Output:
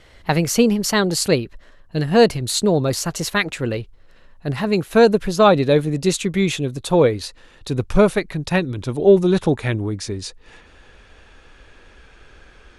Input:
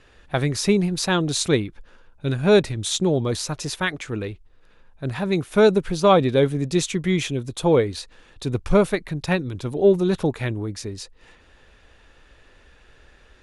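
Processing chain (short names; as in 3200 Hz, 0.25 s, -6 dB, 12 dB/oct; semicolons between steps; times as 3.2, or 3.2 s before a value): speed glide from 117% -> 93%; in parallel at +2 dB: vocal rider within 4 dB 2 s; on the sum: gain -4 dB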